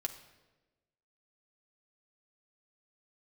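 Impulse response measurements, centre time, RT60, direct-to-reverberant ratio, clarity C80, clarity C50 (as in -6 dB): 11 ms, 1.2 s, 4.0 dB, 13.5 dB, 11.0 dB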